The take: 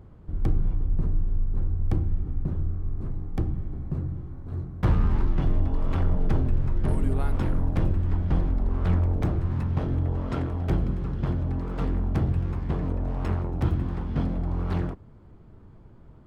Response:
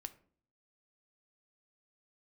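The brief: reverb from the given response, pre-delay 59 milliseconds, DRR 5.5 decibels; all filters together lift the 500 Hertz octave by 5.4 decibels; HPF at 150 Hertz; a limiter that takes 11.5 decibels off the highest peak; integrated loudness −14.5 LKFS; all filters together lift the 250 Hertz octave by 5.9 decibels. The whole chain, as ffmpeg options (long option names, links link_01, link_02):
-filter_complex "[0:a]highpass=150,equalizer=frequency=250:width_type=o:gain=8,equalizer=frequency=500:width_type=o:gain=4,alimiter=limit=-22dB:level=0:latency=1,asplit=2[link_01][link_02];[1:a]atrim=start_sample=2205,adelay=59[link_03];[link_02][link_03]afir=irnorm=-1:irlink=0,volume=-1dB[link_04];[link_01][link_04]amix=inputs=2:normalize=0,volume=16.5dB"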